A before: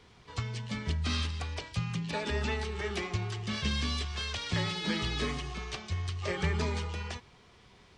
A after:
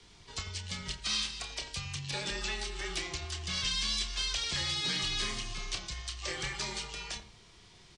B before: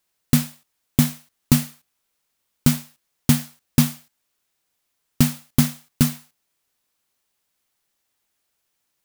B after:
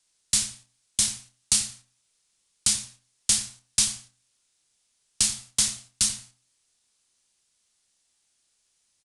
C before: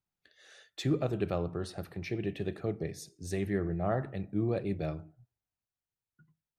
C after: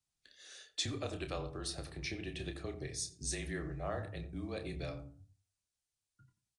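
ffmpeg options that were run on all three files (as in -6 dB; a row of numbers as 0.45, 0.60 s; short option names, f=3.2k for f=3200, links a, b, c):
-filter_complex "[0:a]equalizer=f=800:w=0.31:g=-6,bandreject=f=50:t=h:w=6,bandreject=f=100:t=h:w=6,bandreject=f=150:t=h:w=6,bandreject=f=200:t=h:w=6,bandreject=f=250:t=h:w=6,bandreject=f=300:t=h:w=6,acrossover=split=630|3500[a][b][c];[a]acompressor=threshold=-43dB:ratio=6[d];[b]alimiter=level_in=8dB:limit=-24dB:level=0:latency=1:release=247,volume=-8dB[e];[c]acontrast=67[f];[d][e][f]amix=inputs=3:normalize=0,afreqshift=-28,asplit=2[g][h];[h]adelay=29,volume=-8.5dB[i];[g][i]amix=inputs=2:normalize=0,asplit=2[j][k];[k]adelay=88,lowpass=f=820:p=1,volume=-8.5dB,asplit=2[l][m];[m]adelay=88,lowpass=f=820:p=1,volume=0.24,asplit=2[n][o];[o]adelay=88,lowpass=f=820:p=1,volume=0.24[p];[l][n][p]amix=inputs=3:normalize=0[q];[j][q]amix=inputs=2:normalize=0,aresample=22050,aresample=44100,volume=2dB"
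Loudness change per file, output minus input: -0.5, -2.5, -6.5 LU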